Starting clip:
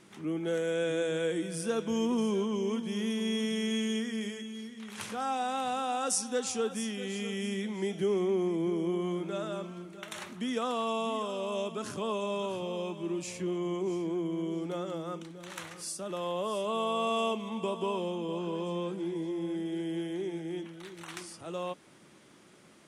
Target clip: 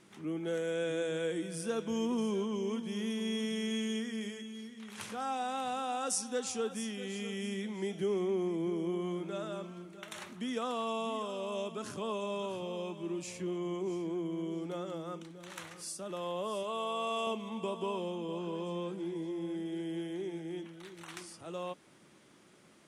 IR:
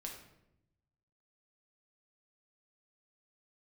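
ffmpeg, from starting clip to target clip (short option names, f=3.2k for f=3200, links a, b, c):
-filter_complex "[0:a]asettb=1/sr,asplit=3[a][b][c];[a]atrim=end=16.634[d];[b]atrim=start=16.63:end=17.27,asetpts=PTS-STARTPTS,afade=t=in:d=0.004:c=qsin,afade=t=out:st=0.636:d=0.004:c=qsin,lowshelf=f=230:g=-11[e];[c]atrim=start=17.266[f];[d][e]acrossfade=d=0.004:c1=hsin:c2=qsin[g];[g][f]acrossfade=d=0.004:c1=qsin:c2=hsin,volume=-3.5dB"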